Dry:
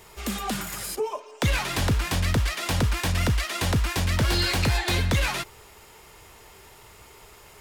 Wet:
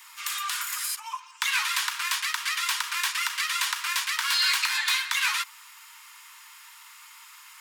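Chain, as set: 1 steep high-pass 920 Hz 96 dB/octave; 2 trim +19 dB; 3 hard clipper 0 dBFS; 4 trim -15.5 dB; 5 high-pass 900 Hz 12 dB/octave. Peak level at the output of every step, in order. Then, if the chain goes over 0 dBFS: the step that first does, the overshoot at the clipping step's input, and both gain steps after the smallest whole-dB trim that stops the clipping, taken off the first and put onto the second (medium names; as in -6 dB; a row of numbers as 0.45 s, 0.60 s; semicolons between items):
-14.5 dBFS, +4.5 dBFS, 0.0 dBFS, -15.5 dBFS, -12.5 dBFS; step 2, 4.5 dB; step 2 +14 dB, step 4 -10.5 dB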